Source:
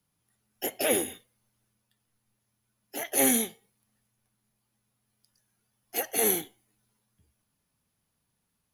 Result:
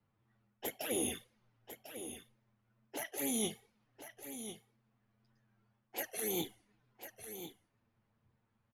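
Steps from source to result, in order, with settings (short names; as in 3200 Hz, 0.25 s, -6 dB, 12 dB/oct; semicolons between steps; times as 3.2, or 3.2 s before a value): wow and flutter 63 cents; reverse; compressor 8:1, threshold -37 dBFS, peak gain reduction 17.5 dB; reverse; low-pass opened by the level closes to 1800 Hz, open at -40 dBFS; envelope flanger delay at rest 9.1 ms, full sweep at -35.5 dBFS; echo 1.048 s -10.5 dB; gain +5.5 dB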